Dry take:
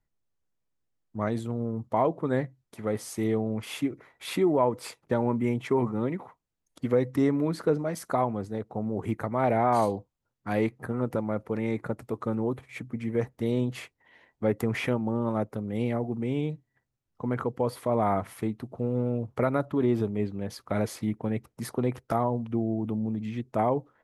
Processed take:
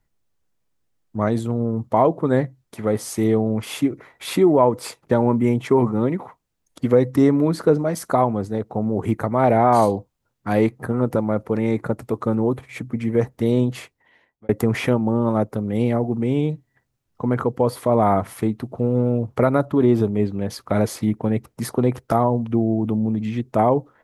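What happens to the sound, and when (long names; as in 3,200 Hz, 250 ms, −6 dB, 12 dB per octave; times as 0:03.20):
0:13.61–0:14.49: fade out
whole clip: dynamic equaliser 2,300 Hz, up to −4 dB, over −47 dBFS, Q 1; level +8.5 dB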